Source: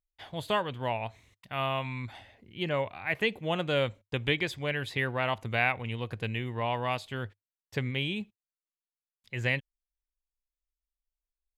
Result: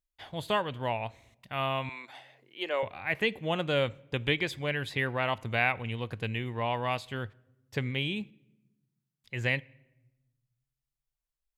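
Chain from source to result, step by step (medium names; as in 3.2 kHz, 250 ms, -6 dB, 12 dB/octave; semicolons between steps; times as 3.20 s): 1.89–2.83 s: high-pass 360 Hz 24 dB/octave; on a send: reverberation RT60 1.0 s, pre-delay 4 ms, DRR 23 dB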